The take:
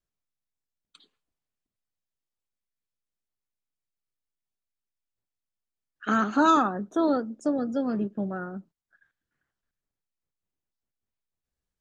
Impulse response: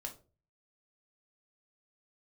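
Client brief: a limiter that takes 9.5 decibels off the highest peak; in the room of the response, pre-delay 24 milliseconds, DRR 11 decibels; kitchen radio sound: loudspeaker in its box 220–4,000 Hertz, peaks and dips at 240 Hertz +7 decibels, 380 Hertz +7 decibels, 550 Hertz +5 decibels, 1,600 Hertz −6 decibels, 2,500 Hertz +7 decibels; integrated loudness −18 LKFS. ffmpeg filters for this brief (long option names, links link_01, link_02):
-filter_complex "[0:a]alimiter=limit=-19.5dB:level=0:latency=1,asplit=2[link_01][link_02];[1:a]atrim=start_sample=2205,adelay=24[link_03];[link_02][link_03]afir=irnorm=-1:irlink=0,volume=-9dB[link_04];[link_01][link_04]amix=inputs=2:normalize=0,highpass=220,equalizer=frequency=240:width_type=q:width=4:gain=7,equalizer=frequency=380:width_type=q:width=4:gain=7,equalizer=frequency=550:width_type=q:width=4:gain=5,equalizer=frequency=1600:width_type=q:width=4:gain=-6,equalizer=frequency=2500:width_type=q:width=4:gain=7,lowpass=frequency=4000:width=0.5412,lowpass=frequency=4000:width=1.3066,volume=9dB"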